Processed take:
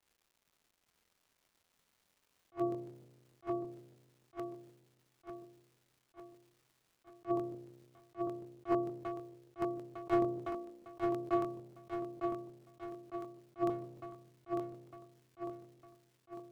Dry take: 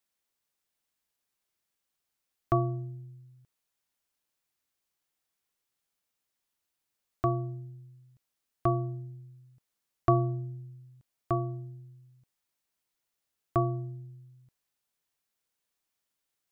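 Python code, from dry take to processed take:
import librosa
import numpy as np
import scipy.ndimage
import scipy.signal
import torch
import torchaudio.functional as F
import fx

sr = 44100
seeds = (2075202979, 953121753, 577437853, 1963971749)

y = fx.octave_divider(x, sr, octaves=2, level_db=-5.0)
y = scipy.signal.sosfilt(scipy.signal.cheby1(2, 1.0, [330.0, 2200.0], 'bandpass', fs=sr, output='sos'), y)
y = np.clip(y, -10.0 ** (-26.0 / 20.0), 10.0 ** (-26.0 / 20.0))
y = fx.peak_eq(y, sr, hz=530.0, db=4.5, octaves=1.9)
y = fx.dmg_crackle(y, sr, seeds[0], per_s=370.0, level_db=-59.0)
y = fx.low_shelf(y, sr, hz=360.0, db=3.0)
y = fx.echo_feedback(y, sr, ms=905, feedback_pct=49, wet_db=-4.0)
y = fx.buffer_crackle(y, sr, first_s=0.9, period_s=0.15, block=1024, kind='repeat')
y = fx.attack_slew(y, sr, db_per_s=440.0)
y = y * 10.0 ** (-2.0 / 20.0)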